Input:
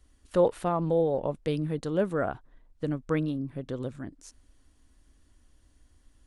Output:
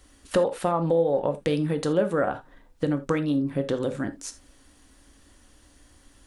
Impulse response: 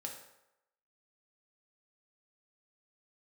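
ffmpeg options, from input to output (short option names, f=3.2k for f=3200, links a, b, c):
-filter_complex "[0:a]lowshelf=f=150:g=-11,acompressor=threshold=-35dB:ratio=4,asplit=2[a][b];[1:a]atrim=start_sample=2205,atrim=end_sample=3969[c];[b][c]afir=irnorm=-1:irlink=0,volume=3dB[d];[a][d]amix=inputs=2:normalize=0,volume=7.5dB"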